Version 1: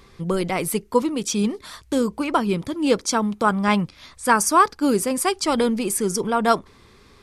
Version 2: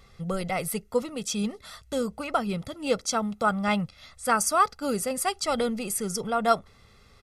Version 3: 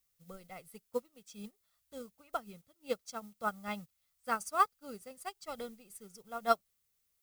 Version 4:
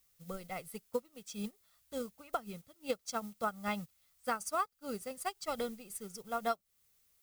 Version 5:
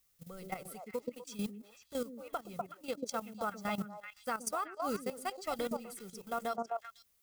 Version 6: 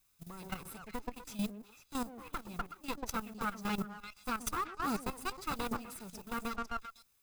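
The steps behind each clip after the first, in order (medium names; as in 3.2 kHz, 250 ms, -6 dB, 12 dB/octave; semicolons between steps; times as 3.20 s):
comb 1.5 ms, depth 66%; trim -6.5 dB
added noise blue -42 dBFS; upward expansion 2.5:1, over -38 dBFS; trim -4.5 dB
compression 8:1, threshold -38 dBFS, peak gain reduction 16.5 dB; trim +7 dB
repeats whose band climbs or falls 124 ms, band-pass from 290 Hz, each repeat 1.4 oct, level -1.5 dB; level held to a coarse grid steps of 13 dB; trim +5 dB
comb filter that takes the minimum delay 0.79 ms; trim +2 dB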